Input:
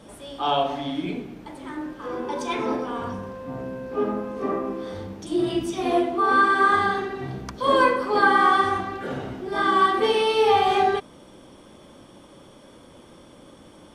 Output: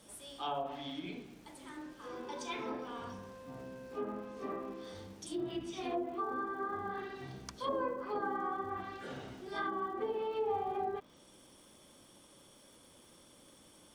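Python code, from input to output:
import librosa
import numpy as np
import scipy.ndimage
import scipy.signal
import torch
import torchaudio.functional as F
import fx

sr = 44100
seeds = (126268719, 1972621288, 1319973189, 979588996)

y = fx.env_lowpass_down(x, sr, base_hz=780.0, full_db=-16.5)
y = scipy.signal.lfilter([1.0, -0.8], [1.0], y)
y = fx.dmg_crackle(y, sr, seeds[0], per_s=260.0, level_db=-55.0)
y = F.gain(torch.from_numpy(y), -1.0).numpy()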